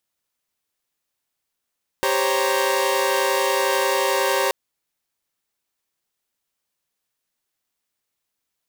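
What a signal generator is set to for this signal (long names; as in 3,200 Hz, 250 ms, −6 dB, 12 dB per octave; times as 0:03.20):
held notes G4/C5/C#5/A#5 saw, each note −21.5 dBFS 2.48 s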